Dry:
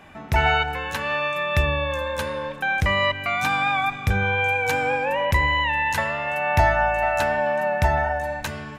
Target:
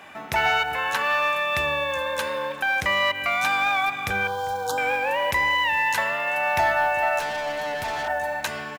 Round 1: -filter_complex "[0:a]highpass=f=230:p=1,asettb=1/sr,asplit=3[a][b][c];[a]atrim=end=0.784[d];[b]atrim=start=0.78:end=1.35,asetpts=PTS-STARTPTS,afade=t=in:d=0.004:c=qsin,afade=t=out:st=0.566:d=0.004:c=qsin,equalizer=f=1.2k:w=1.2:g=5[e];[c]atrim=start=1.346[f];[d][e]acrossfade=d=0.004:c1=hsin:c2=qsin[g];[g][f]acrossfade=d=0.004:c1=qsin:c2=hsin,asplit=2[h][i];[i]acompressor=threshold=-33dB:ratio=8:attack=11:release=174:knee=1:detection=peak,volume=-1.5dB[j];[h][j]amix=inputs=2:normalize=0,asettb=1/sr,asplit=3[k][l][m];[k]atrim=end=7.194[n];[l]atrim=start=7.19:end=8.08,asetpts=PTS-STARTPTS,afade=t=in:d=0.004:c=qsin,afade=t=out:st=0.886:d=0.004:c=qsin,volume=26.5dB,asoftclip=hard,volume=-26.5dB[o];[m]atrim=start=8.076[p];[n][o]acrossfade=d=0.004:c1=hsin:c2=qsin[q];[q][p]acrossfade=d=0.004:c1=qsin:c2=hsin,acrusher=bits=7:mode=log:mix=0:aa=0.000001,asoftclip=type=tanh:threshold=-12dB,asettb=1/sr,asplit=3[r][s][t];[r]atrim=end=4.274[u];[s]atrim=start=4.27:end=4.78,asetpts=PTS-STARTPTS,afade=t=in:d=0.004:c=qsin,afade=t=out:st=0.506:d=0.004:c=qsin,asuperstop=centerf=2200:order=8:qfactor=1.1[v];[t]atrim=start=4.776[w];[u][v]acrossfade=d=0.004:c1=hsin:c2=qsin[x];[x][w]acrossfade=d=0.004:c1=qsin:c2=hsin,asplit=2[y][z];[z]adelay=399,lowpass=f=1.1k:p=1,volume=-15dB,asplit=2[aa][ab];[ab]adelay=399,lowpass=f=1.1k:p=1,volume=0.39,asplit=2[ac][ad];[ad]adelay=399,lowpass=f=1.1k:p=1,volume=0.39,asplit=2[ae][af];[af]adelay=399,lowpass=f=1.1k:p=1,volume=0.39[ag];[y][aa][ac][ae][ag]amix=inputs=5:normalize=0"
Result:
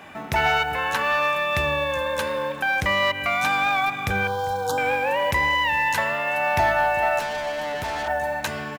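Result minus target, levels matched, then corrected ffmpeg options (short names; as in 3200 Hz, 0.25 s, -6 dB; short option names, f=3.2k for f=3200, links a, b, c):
250 Hz band +4.5 dB
-filter_complex "[0:a]highpass=f=630:p=1,asettb=1/sr,asplit=3[a][b][c];[a]atrim=end=0.784[d];[b]atrim=start=0.78:end=1.35,asetpts=PTS-STARTPTS,afade=t=in:d=0.004:c=qsin,afade=t=out:st=0.566:d=0.004:c=qsin,equalizer=f=1.2k:w=1.2:g=5[e];[c]atrim=start=1.346[f];[d][e]acrossfade=d=0.004:c1=hsin:c2=qsin[g];[g][f]acrossfade=d=0.004:c1=qsin:c2=hsin,asplit=2[h][i];[i]acompressor=threshold=-33dB:ratio=8:attack=11:release=174:knee=1:detection=peak,volume=-1.5dB[j];[h][j]amix=inputs=2:normalize=0,asettb=1/sr,asplit=3[k][l][m];[k]atrim=end=7.194[n];[l]atrim=start=7.19:end=8.08,asetpts=PTS-STARTPTS,afade=t=in:d=0.004:c=qsin,afade=t=out:st=0.886:d=0.004:c=qsin,volume=26.5dB,asoftclip=hard,volume=-26.5dB[o];[m]atrim=start=8.076[p];[n][o]acrossfade=d=0.004:c1=hsin:c2=qsin[q];[q][p]acrossfade=d=0.004:c1=qsin:c2=hsin,acrusher=bits=7:mode=log:mix=0:aa=0.000001,asoftclip=type=tanh:threshold=-12dB,asettb=1/sr,asplit=3[r][s][t];[r]atrim=end=4.274[u];[s]atrim=start=4.27:end=4.78,asetpts=PTS-STARTPTS,afade=t=in:d=0.004:c=qsin,afade=t=out:st=0.506:d=0.004:c=qsin,asuperstop=centerf=2200:order=8:qfactor=1.1[v];[t]atrim=start=4.776[w];[u][v]acrossfade=d=0.004:c1=hsin:c2=qsin[x];[x][w]acrossfade=d=0.004:c1=qsin:c2=hsin,asplit=2[y][z];[z]adelay=399,lowpass=f=1.1k:p=1,volume=-15dB,asplit=2[aa][ab];[ab]adelay=399,lowpass=f=1.1k:p=1,volume=0.39,asplit=2[ac][ad];[ad]adelay=399,lowpass=f=1.1k:p=1,volume=0.39,asplit=2[ae][af];[af]adelay=399,lowpass=f=1.1k:p=1,volume=0.39[ag];[y][aa][ac][ae][ag]amix=inputs=5:normalize=0"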